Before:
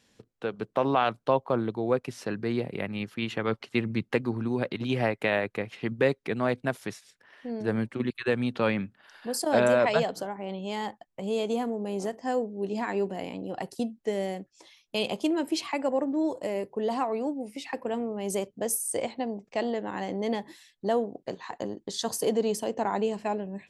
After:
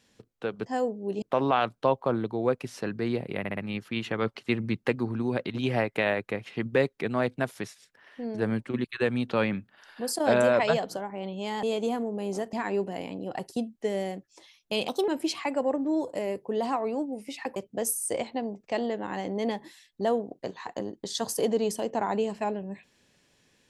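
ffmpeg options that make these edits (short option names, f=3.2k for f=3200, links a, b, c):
-filter_complex "[0:a]asplit=11[a][b][c][d][e][f][g][h][i][j][k];[a]atrim=end=0.662[l];[b]atrim=start=12.198:end=12.762[m];[c]atrim=start=0.658:end=2.892[n];[d]atrim=start=2.828:end=2.892[o];[e]atrim=start=2.828:end=2.892[p];[f]atrim=start=2.828:end=10.892[q];[g]atrim=start=11.298:end=12.202[r];[h]atrim=start=12.758:end=15.114[s];[i]atrim=start=15.11:end=15.36,asetpts=PTS-STARTPTS,asetrate=54684,aresample=44100,atrim=end_sample=8891,asetpts=PTS-STARTPTS[t];[j]atrim=start=15.356:end=17.842[u];[k]atrim=start=18.398[v];[l][m]acrossfade=d=0.004:c1=hsin:c2=hsin[w];[w][n]acrossfade=d=0.004:c1=hsin:c2=hsin[x];[x][o]acrossfade=d=0.004:c1=hsin:c2=hsin[y];[y][p]acrossfade=d=0.004:c1=hsin:c2=hsin[z];[z][q]acrossfade=d=0.004:c1=hsin:c2=hsin[aa];[aa][r]acrossfade=d=0.004:c1=hsin:c2=hsin[ab];[ab][s]acrossfade=d=0.004:c1=hsin:c2=hsin[ac];[ac][t]acrossfade=d=0.004:c1=hsin:c2=hsin[ad];[ad][u]acrossfade=d=0.004:c1=hsin:c2=hsin[ae];[ae][v]acrossfade=d=0.004:c1=hsin:c2=hsin"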